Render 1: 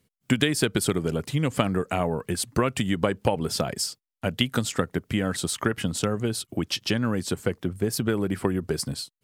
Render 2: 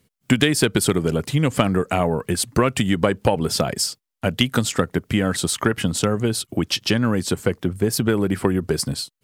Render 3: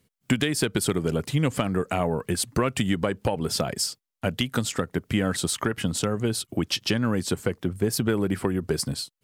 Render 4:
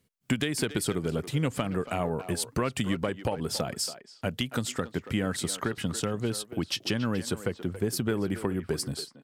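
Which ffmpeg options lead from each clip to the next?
-af "acontrast=45"
-af "alimiter=limit=-7dB:level=0:latency=1:release=263,volume=-4dB"
-filter_complex "[0:a]asplit=2[a][b];[b]adelay=280,highpass=300,lowpass=3.4k,asoftclip=type=hard:threshold=-19.5dB,volume=-11dB[c];[a][c]amix=inputs=2:normalize=0,volume=-4.5dB"

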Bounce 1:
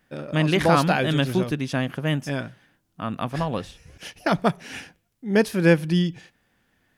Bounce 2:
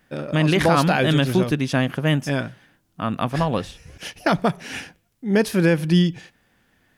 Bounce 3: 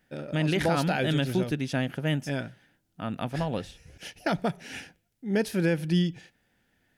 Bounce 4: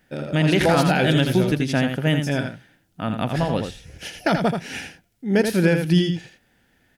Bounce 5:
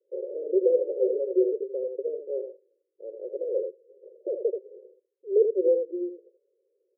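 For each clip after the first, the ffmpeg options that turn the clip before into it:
-af "alimiter=limit=-12dB:level=0:latency=1:release=73,volume=4.5dB"
-af "equalizer=f=1.1k:w=7.4:g=-13.5,volume=-7.5dB"
-af "aecho=1:1:82:0.473,volume=7dB"
-af "asuperpass=centerf=450:order=12:qfactor=2.3,volume=1.5dB"

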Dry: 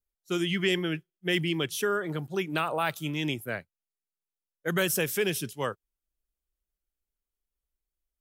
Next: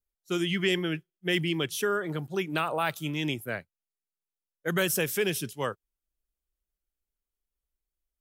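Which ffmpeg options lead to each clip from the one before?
-af anull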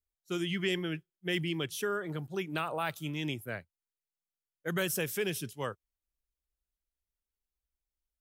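-af "equalizer=f=74:w=1.2:g=7.5,volume=-5.5dB"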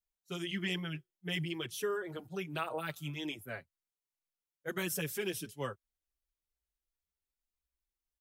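-filter_complex "[0:a]asplit=2[a][b];[b]adelay=5.7,afreqshift=-1.9[c];[a][c]amix=inputs=2:normalize=1"

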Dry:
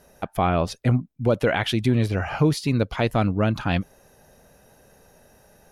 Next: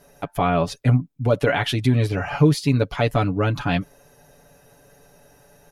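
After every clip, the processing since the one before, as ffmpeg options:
-af "aecho=1:1:7:0.69"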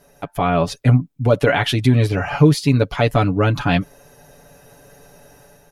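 -af "dynaudnorm=f=340:g=3:m=6dB"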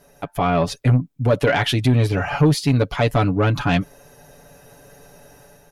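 -af "asoftclip=type=tanh:threshold=-8.5dB"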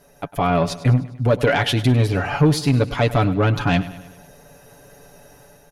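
-af "aecho=1:1:101|202|303|404|505:0.158|0.0856|0.0462|0.025|0.0135"

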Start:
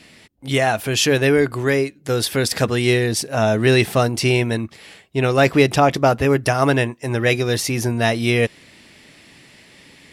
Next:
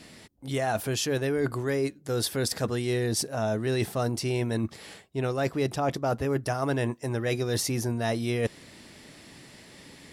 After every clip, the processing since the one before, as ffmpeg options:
-af "equalizer=f=2.5k:w=1.3:g=-7,areverse,acompressor=threshold=-25dB:ratio=6,areverse"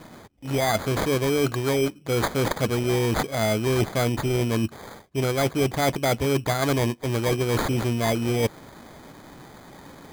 -af "acrusher=samples=16:mix=1:aa=0.000001,volume=4.5dB"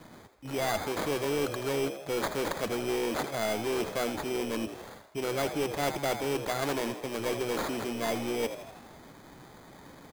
-filter_complex "[0:a]acrossover=split=180[a][b];[a]aeval=exprs='0.0188*(abs(mod(val(0)/0.0188+3,4)-2)-1)':c=same[c];[b]asplit=7[d][e][f][g][h][i][j];[e]adelay=81,afreqshift=68,volume=-11dB[k];[f]adelay=162,afreqshift=136,volume=-15.9dB[l];[g]adelay=243,afreqshift=204,volume=-20.8dB[m];[h]adelay=324,afreqshift=272,volume=-25.6dB[n];[i]adelay=405,afreqshift=340,volume=-30.5dB[o];[j]adelay=486,afreqshift=408,volume=-35.4dB[p];[d][k][l][m][n][o][p]amix=inputs=7:normalize=0[q];[c][q]amix=inputs=2:normalize=0,aeval=exprs='clip(val(0),-1,0.1)':c=same,volume=-6dB"

